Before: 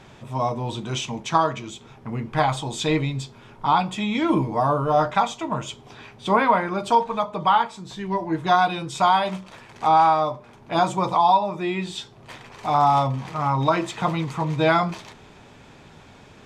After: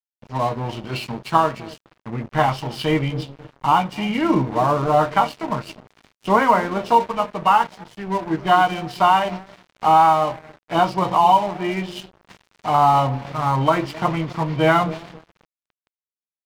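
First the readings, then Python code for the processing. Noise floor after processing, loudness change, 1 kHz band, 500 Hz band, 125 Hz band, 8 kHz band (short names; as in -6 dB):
under -85 dBFS, +2.5 dB, +2.5 dB, +2.5 dB, +2.0 dB, n/a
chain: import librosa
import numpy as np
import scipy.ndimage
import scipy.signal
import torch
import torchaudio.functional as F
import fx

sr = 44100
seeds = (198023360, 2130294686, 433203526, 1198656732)

y = fx.freq_compress(x, sr, knee_hz=2100.0, ratio=1.5)
y = fx.echo_bbd(y, sr, ms=261, stages=1024, feedback_pct=43, wet_db=-12)
y = np.sign(y) * np.maximum(np.abs(y) - 10.0 ** (-36.5 / 20.0), 0.0)
y = y * 10.0 ** (3.5 / 20.0)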